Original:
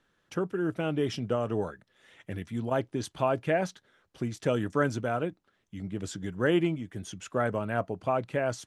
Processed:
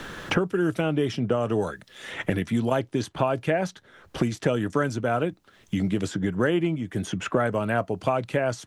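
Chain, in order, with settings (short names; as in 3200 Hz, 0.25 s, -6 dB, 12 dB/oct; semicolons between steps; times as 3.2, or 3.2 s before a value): three-band squash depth 100%; gain +4 dB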